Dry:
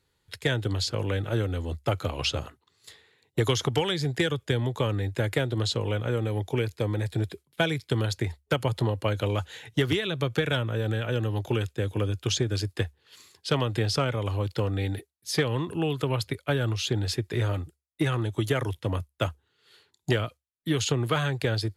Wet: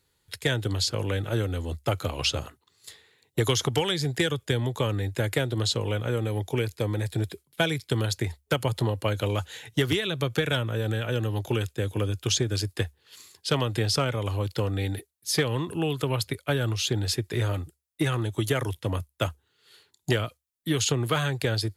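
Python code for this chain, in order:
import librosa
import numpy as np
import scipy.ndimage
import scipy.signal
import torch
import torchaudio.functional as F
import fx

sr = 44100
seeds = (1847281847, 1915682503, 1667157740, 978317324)

y = fx.high_shelf(x, sr, hz=6100.0, db=8.5)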